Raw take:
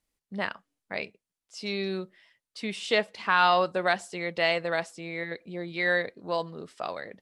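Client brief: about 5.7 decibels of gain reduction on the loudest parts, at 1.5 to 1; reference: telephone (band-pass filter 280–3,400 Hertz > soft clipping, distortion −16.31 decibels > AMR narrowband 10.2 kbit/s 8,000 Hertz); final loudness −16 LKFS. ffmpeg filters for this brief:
ffmpeg -i in.wav -af "acompressor=threshold=-33dB:ratio=1.5,highpass=280,lowpass=3400,asoftclip=threshold=-21.5dB,volume=20dB" -ar 8000 -c:a libopencore_amrnb -b:a 10200 out.amr

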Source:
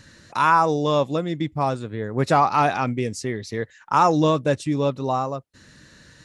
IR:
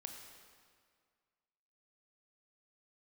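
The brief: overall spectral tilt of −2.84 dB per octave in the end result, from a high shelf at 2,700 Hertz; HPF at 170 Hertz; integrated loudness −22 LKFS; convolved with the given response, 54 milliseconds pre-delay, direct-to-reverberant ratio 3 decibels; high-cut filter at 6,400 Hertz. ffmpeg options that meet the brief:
-filter_complex "[0:a]highpass=170,lowpass=6400,highshelf=frequency=2700:gain=-8,asplit=2[link_01][link_02];[1:a]atrim=start_sample=2205,adelay=54[link_03];[link_02][link_03]afir=irnorm=-1:irlink=0,volume=1dB[link_04];[link_01][link_04]amix=inputs=2:normalize=0,volume=-0.5dB"

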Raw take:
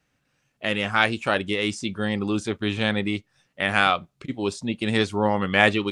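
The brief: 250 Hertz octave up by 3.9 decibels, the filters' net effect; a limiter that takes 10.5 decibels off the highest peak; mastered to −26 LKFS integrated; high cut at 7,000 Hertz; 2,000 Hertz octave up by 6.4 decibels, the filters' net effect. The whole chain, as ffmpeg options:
ffmpeg -i in.wav -af "lowpass=7000,equalizer=frequency=250:width_type=o:gain=5,equalizer=frequency=2000:width_type=o:gain=8,volume=-3.5dB,alimiter=limit=-11dB:level=0:latency=1" out.wav

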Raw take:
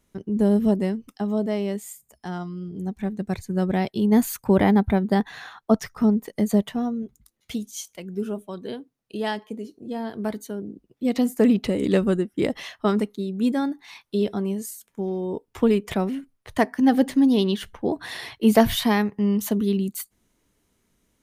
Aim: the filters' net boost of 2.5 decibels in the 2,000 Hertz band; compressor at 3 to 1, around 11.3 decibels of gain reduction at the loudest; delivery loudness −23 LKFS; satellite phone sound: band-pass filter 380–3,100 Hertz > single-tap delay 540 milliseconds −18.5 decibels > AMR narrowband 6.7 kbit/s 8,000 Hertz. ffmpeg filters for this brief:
ffmpeg -i in.wav -af "equalizer=frequency=2000:width_type=o:gain=3.5,acompressor=threshold=-27dB:ratio=3,highpass=380,lowpass=3100,aecho=1:1:540:0.119,volume=14.5dB" -ar 8000 -c:a libopencore_amrnb -b:a 6700 out.amr

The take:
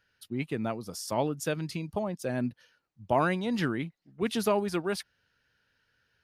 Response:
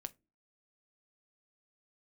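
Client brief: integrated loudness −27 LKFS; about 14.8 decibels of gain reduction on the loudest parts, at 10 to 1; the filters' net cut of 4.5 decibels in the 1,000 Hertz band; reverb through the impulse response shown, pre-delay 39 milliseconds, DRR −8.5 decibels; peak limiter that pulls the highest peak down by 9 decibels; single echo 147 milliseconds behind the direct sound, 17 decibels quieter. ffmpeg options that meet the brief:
-filter_complex "[0:a]equalizer=frequency=1000:width_type=o:gain=-6,acompressor=threshold=-38dB:ratio=10,alimiter=level_in=9.5dB:limit=-24dB:level=0:latency=1,volume=-9.5dB,aecho=1:1:147:0.141,asplit=2[link_01][link_02];[1:a]atrim=start_sample=2205,adelay=39[link_03];[link_02][link_03]afir=irnorm=-1:irlink=0,volume=12.5dB[link_04];[link_01][link_04]amix=inputs=2:normalize=0,volume=8dB"

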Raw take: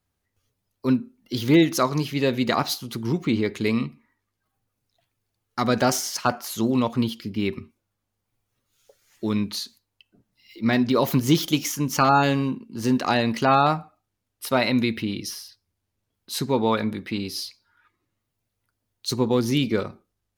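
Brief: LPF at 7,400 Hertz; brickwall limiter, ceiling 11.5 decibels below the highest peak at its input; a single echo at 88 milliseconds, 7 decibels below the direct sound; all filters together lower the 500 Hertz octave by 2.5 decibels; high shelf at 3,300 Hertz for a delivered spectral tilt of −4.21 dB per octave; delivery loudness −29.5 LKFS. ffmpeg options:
ffmpeg -i in.wav -af "lowpass=7400,equalizer=frequency=500:width_type=o:gain=-3.5,highshelf=frequency=3300:gain=5,alimiter=limit=-19dB:level=0:latency=1,aecho=1:1:88:0.447,volume=-1dB" out.wav

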